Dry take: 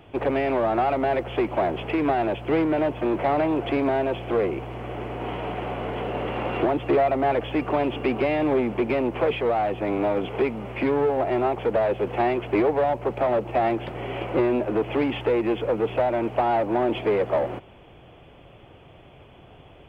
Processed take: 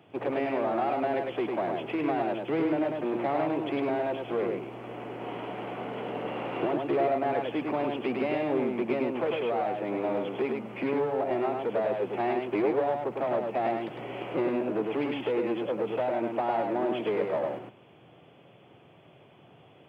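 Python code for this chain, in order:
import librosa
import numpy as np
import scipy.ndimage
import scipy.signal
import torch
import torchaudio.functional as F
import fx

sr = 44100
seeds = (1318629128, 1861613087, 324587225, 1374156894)

y = scipy.signal.sosfilt(scipy.signal.butter(4, 130.0, 'highpass', fs=sr, output='sos'), x)
y = fx.low_shelf(y, sr, hz=170.0, db=4.0)
y = y + 10.0 ** (-3.5 / 20.0) * np.pad(y, (int(103 * sr / 1000.0), 0))[:len(y)]
y = F.gain(torch.from_numpy(y), -7.5).numpy()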